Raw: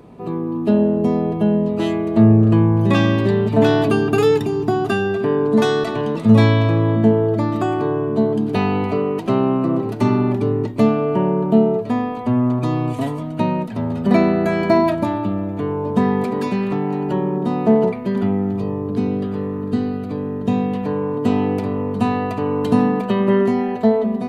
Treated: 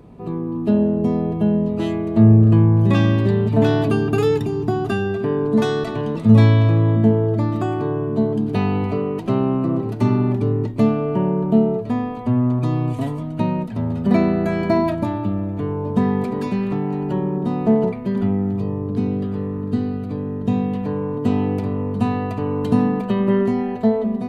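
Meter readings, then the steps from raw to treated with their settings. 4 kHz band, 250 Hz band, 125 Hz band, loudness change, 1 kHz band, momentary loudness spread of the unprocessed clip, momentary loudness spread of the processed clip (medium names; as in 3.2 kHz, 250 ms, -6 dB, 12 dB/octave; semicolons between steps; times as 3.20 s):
-4.5 dB, -1.0 dB, +2.0 dB, -1.0 dB, -4.0 dB, 7 LU, 9 LU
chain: bass shelf 150 Hz +11 dB; trim -4.5 dB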